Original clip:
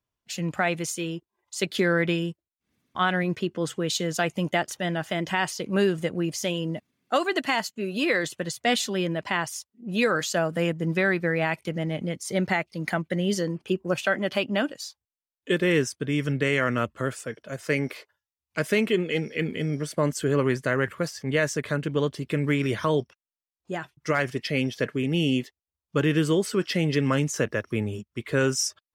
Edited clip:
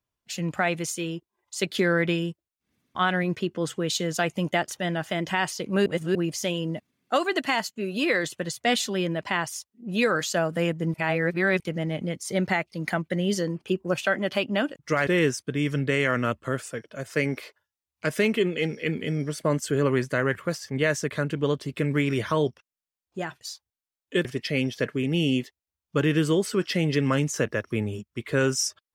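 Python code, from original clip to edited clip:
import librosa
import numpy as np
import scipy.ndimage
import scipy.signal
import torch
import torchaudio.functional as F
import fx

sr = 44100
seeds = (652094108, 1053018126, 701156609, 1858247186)

y = fx.edit(x, sr, fx.reverse_span(start_s=5.86, length_s=0.29),
    fx.reverse_span(start_s=10.94, length_s=0.66),
    fx.swap(start_s=14.76, length_s=0.84, other_s=23.94, other_length_s=0.31), tone=tone)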